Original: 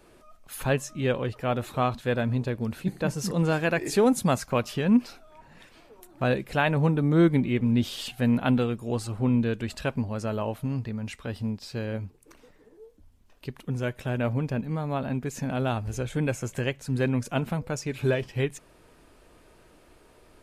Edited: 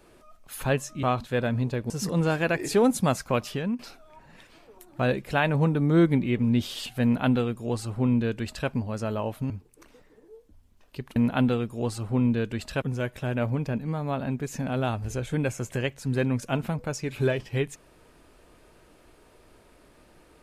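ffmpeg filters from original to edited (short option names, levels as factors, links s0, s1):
-filter_complex "[0:a]asplit=7[s0][s1][s2][s3][s4][s5][s6];[s0]atrim=end=1.032[s7];[s1]atrim=start=1.768:end=2.642[s8];[s2]atrim=start=3.118:end=5.01,asetpts=PTS-STARTPTS,afade=t=out:st=1.602:d=0.29:silence=0.133352[s9];[s3]atrim=start=5.01:end=10.722,asetpts=PTS-STARTPTS,afade=t=in:d=0.004:c=hsin:silence=0.133352[s10];[s4]atrim=start=11.988:end=13.652[s11];[s5]atrim=start=8.248:end=9.912[s12];[s6]atrim=start=13.648[s13];[s7][s8]acrossfade=d=0.004:c1=hsin:c2=hsin[s14];[s9][s10]concat=n=2:v=0:a=1[s15];[s14][s15]acrossfade=d=0.004:c1=hsin:c2=hsin[s16];[s16][s11]acrossfade=d=0.004:c1=hsin:c2=hsin[s17];[s17][s12]acrossfade=d=0.004:c1=hsin:c2=hsin[s18];[s18][s13]acrossfade=d=0.004:c1=hsin:c2=hsin"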